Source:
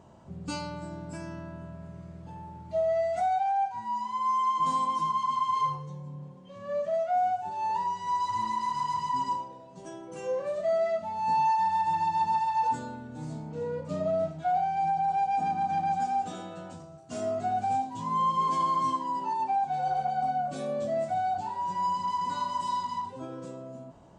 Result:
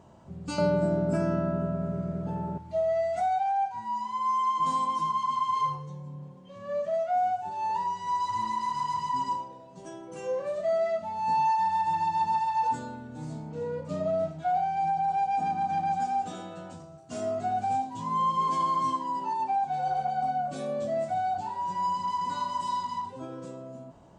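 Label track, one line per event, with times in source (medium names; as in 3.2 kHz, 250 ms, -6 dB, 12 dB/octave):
0.580000	2.580000	small resonant body resonances 220/400/590/1300 Hz, height 17 dB, ringing for 30 ms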